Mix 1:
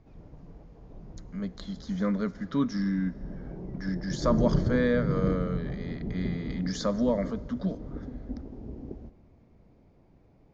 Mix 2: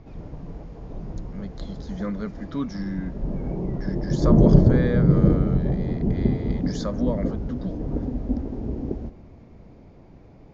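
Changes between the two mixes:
speech: send off; background +11.5 dB

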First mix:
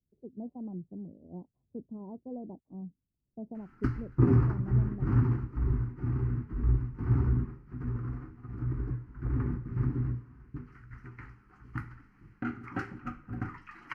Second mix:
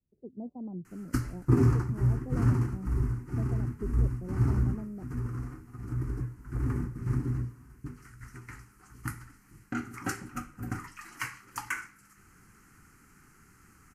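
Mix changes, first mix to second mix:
background: entry -2.70 s; master: remove air absorption 340 m

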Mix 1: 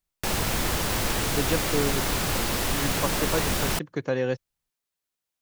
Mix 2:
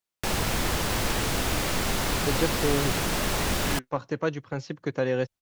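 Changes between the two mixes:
speech: entry +0.90 s; master: add high shelf 9300 Hz -5 dB

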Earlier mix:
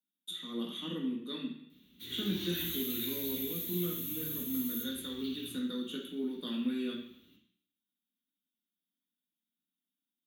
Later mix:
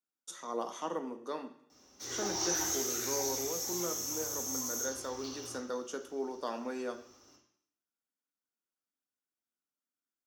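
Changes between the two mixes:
speech: send -11.0 dB; master: remove EQ curve 120 Hz 0 dB, 190 Hz +12 dB, 750 Hz -26 dB, 3700 Hz +10 dB, 5400 Hz -29 dB, 11000 Hz +6 dB

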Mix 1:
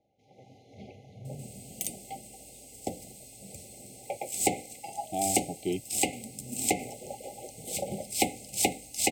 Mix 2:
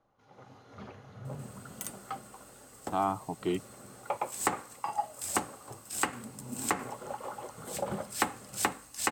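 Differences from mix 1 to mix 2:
speech: entry -2.20 s; second sound -6.0 dB; master: remove brick-wall FIR band-stop 830–2000 Hz

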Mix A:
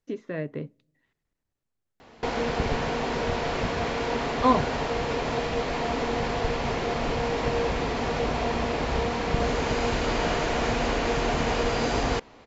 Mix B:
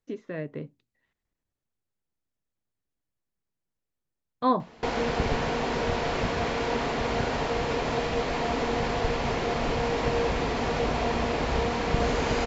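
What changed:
background: entry +2.60 s; reverb: off

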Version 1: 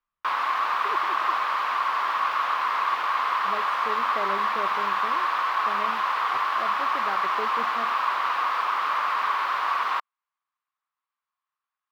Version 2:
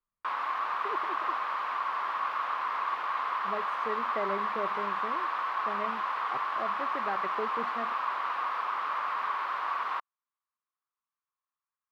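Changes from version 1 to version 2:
background -5.5 dB; master: add high shelf 3000 Hz -9.5 dB

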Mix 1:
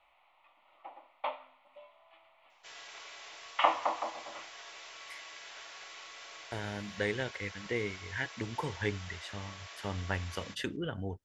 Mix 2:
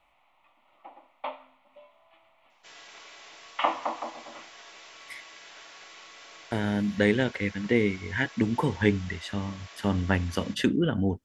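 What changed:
speech +7.0 dB; master: add bell 230 Hz +11 dB 1 oct

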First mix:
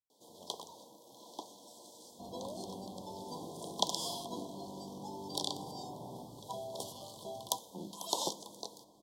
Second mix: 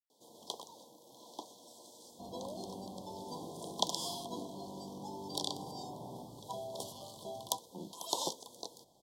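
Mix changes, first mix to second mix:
speech -7.0 dB; reverb: off

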